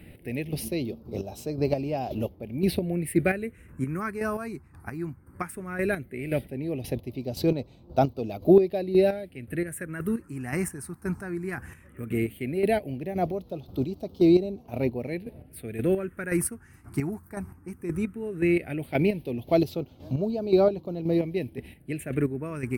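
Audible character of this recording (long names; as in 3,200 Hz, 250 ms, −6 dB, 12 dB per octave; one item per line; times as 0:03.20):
phaser sweep stages 4, 0.16 Hz, lowest notch 560–1,800 Hz
chopped level 1.9 Hz, depth 60%, duty 30%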